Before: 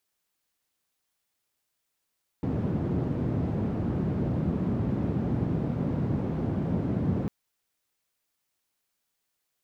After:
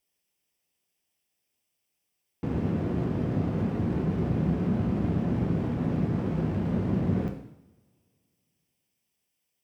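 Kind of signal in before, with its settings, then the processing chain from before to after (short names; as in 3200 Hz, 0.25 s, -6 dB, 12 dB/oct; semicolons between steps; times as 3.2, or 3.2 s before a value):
noise band 110–180 Hz, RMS -28 dBFS 4.85 s
minimum comb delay 0.36 ms; HPF 45 Hz; two-slope reverb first 0.75 s, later 2.7 s, from -27 dB, DRR 3 dB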